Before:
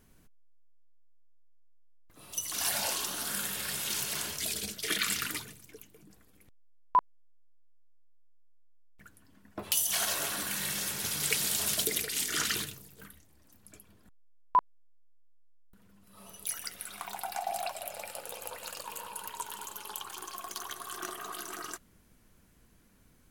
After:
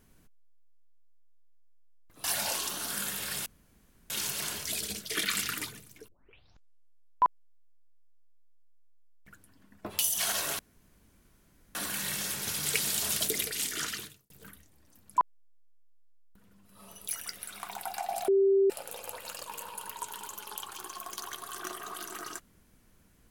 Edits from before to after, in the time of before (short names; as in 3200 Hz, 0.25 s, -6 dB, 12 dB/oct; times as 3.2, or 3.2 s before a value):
2.24–2.61 cut
3.83 insert room tone 0.64 s
5.81 tape start 1.15 s
10.32 insert room tone 1.16 s
12.15–12.87 fade out
13.75–14.56 cut
17.66–18.08 bleep 391 Hz -20 dBFS